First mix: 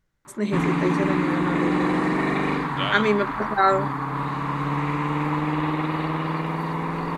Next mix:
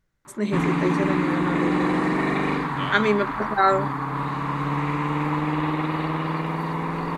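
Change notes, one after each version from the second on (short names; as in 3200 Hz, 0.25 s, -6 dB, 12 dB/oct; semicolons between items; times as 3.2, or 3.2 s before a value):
second voice -7.5 dB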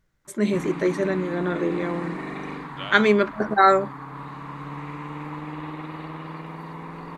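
first voice +3.0 dB; background -10.0 dB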